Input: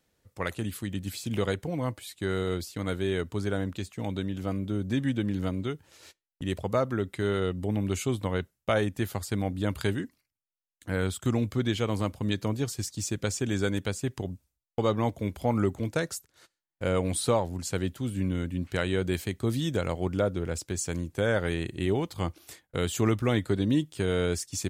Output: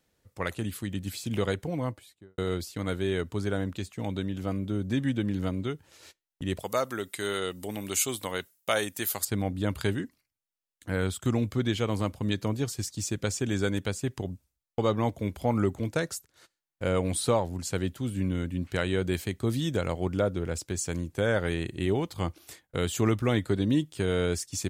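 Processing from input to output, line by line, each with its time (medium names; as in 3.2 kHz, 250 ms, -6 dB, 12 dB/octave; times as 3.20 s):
1.74–2.38 s: studio fade out
6.59–9.25 s: RIAA curve recording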